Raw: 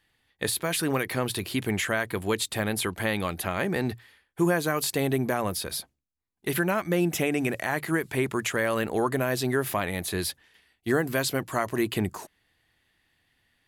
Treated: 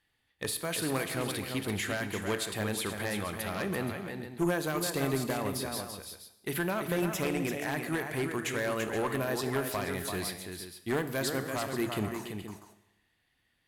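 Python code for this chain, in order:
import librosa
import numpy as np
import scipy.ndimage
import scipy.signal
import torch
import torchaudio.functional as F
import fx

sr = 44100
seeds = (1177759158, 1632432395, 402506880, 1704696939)

p1 = x + fx.echo_multitap(x, sr, ms=(337, 474), db=(-7.0, -12.5), dry=0)
p2 = fx.cheby_harmonics(p1, sr, harmonics=(4, 6), levels_db=(-8, -14), full_scale_db=-9.5)
p3 = fx.rev_schroeder(p2, sr, rt60_s=0.93, comb_ms=26, drr_db=11.0)
y = p3 * librosa.db_to_amplitude(-6.0)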